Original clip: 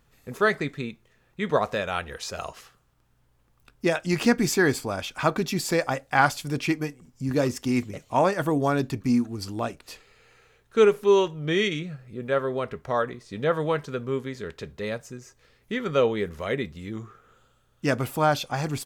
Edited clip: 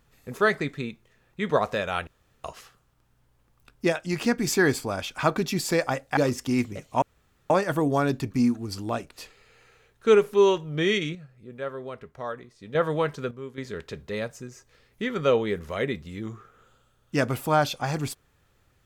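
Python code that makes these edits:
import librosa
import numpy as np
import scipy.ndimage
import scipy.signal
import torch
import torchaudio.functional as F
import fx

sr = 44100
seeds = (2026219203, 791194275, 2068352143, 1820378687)

y = fx.edit(x, sr, fx.room_tone_fill(start_s=2.07, length_s=0.37),
    fx.clip_gain(start_s=3.92, length_s=0.55, db=-3.5),
    fx.cut(start_s=6.17, length_s=1.18),
    fx.insert_room_tone(at_s=8.2, length_s=0.48),
    fx.clip_gain(start_s=11.85, length_s=1.6, db=-8.5),
    fx.clip_gain(start_s=14.01, length_s=0.27, db=-10.0), tone=tone)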